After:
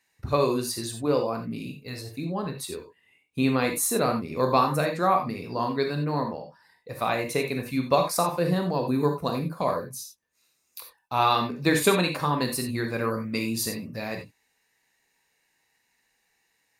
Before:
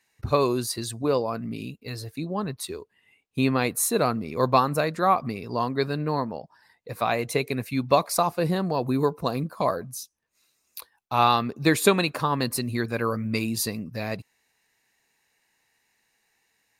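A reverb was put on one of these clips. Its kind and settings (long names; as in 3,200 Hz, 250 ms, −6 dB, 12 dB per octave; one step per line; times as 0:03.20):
reverb whose tail is shaped and stops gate 110 ms flat, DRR 3 dB
level −2.5 dB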